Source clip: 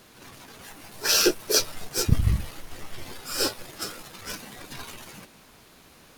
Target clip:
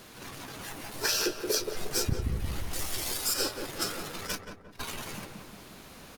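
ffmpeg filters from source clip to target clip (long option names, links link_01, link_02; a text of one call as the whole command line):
ffmpeg -i in.wav -filter_complex "[0:a]asettb=1/sr,asplit=3[link_01][link_02][link_03];[link_01]atrim=end=2.734[link_04];[link_02]atrim=start=2.73:end=3.34,asetpts=PTS-STARTPTS,afade=type=in:duration=0.004:curve=qsin,afade=type=out:start_time=0.606:duration=0.004:curve=qsin,bass=frequency=250:gain=-7,treble=frequency=4000:gain=12[link_05];[link_03]atrim=start=3.336[link_06];[link_04][link_05]acrossfade=duration=0.004:curve1=hsin:curve2=qsin[link_07];[link_07][link_06]acrossfade=duration=0.004:curve1=qsin:curve2=hsin,acompressor=threshold=-29dB:ratio=8,asplit=3[link_08][link_09][link_10];[link_08]afade=type=out:start_time=4.26:duration=0.02[link_11];[link_09]agate=range=-34dB:threshold=-35dB:ratio=16:detection=peak,afade=type=in:start_time=4.26:duration=0.02,afade=type=out:start_time=4.79:duration=0.02[link_12];[link_10]afade=type=in:start_time=4.79:duration=0.02[link_13];[link_11][link_12][link_13]amix=inputs=3:normalize=0,asplit=2[link_14][link_15];[link_15]adelay=176,lowpass=frequency=1100:poles=1,volume=-4dB,asplit=2[link_16][link_17];[link_17]adelay=176,lowpass=frequency=1100:poles=1,volume=0.51,asplit=2[link_18][link_19];[link_19]adelay=176,lowpass=frequency=1100:poles=1,volume=0.51,asplit=2[link_20][link_21];[link_21]adelay=176,lowpass=frequency=1100:poles=1,volume=0.51,asplit=2[link_22][link_23];[link_23]adelay=176,lowpass=frequency=1100:poles=1,volume=0.51,asplit=2[link_24][link_25];[link_25]adelay=176,lowpass=frequency=1100:poles=1,volume=0.51,asplit=2[link_26][link_27];[link_27]adelay=176,lowpass=frequency=1100:poles=1,volume=0.51[link_28];[link_16][link_18][link_20][link_22][link_24][link_26][link_28]amix=inputs=7:normalize=0[link_29];[link_14][link_29]amix=inputs=2:normalize=0,volume=3dB" out.wav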